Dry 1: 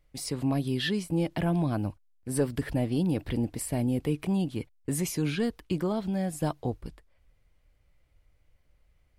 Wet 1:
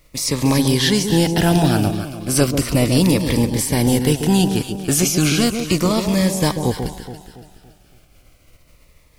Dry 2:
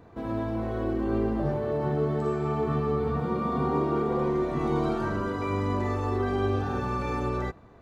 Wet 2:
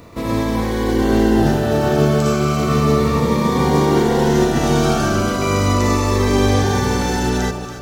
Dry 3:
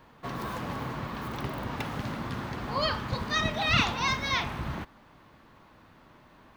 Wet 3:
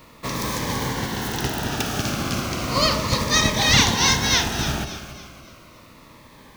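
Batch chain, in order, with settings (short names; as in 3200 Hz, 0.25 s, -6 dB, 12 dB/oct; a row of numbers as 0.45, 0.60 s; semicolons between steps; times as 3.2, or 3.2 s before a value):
spectral contrast lowered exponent 0.68; dynamic EQ 6000 Hz, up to +7 dB, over -55 dBFS, Q 2.5; on a send: echo with dull and thin repeats by turns 0.141 s, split 970 Hz, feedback 64%, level -6.5 dB; on the sum: cascading phaser falling 0.34 Hz; normalise peaks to -2 dBFS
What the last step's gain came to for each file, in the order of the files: +12.0, +11.5, +9.0 dB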